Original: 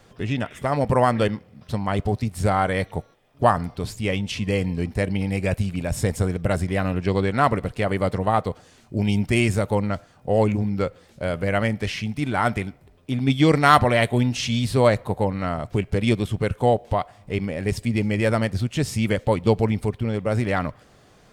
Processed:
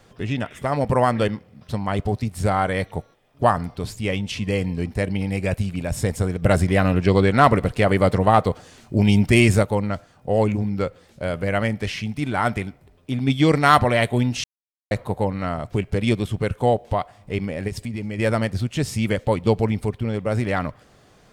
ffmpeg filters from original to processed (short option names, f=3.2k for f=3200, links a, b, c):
-filter_complex "[0:a]asettb=1/sr,asplit=3[a][b][c];[a]atrim=end=6.424[d];[b]atrim=start=6.42:end=9.63,asetpts=PTS-STARTPTS,afade=t=in:d=0.004:c=qsin,afade=t=out:st=3.206:d=0.004:c=qsin,acontrast=39[e];[c]atrim=start=9.626[f];[d][e]acrossfade=d=0.004:c1=hsin:c2=qsin[g];[g][f]acrossfade=d=0.004:c1=qsin:c2=hsin,asplit=3[h][i][j];[h]afade=t=out:st=17.67:d=0.02[k];[i]acompressor=threshold=-25dB:ratio=4:attack=3.2:release=140:knee=1:detection=peak,afade=t=in:st=17.67:d=0.02,afade=t=out:st=18.18:d=0.02[l];[j]afade=t=in:st=18.18:d=0.02[m];[k][l][m]amix=inputs=3:normalize=0,asplit=3[n][o][p];[n]atrim=end=14.44,asetpts=PTS-STARTPTS,afade=t=out:st=14.436:d=0.004:c=hsin[q];[o]atrim=start=14.44:end=14.91,asetpts=PTS-STARTPTS,volume=0[r];[p]atrim=start=14.91,asetpts=PTS-STARTPTS,afade=t=in:d=0.004:c=hsin[s];[q][r][s]concat=n=3:v=0:a=1"